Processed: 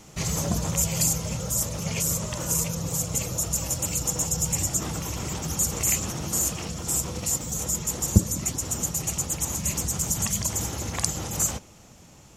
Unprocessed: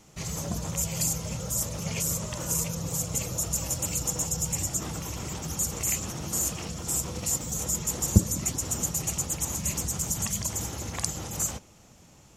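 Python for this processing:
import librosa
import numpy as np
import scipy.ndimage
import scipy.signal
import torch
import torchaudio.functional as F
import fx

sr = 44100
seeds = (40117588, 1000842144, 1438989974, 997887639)

y = fx.rider(x, sr, range_db=10, speed_s=2.0)
y = y * librosa.db_to_amplitude(2.5)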